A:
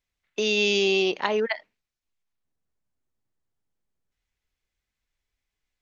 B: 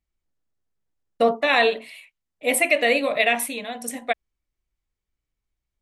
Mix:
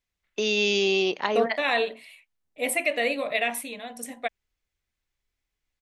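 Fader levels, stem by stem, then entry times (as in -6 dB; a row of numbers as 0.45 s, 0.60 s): -1.0 dB, -6.0 dB; 0.00 s, 0.15 s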